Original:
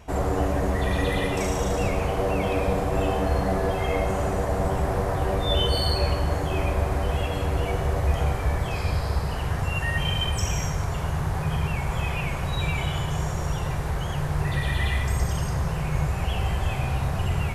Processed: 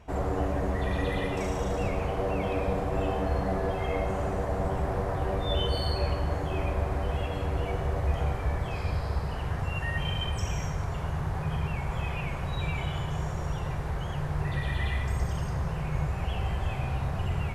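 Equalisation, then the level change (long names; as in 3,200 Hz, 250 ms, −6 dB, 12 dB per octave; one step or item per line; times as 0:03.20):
high-shelf EQ 5,000 Hz −9.5 dB
−4.5 dB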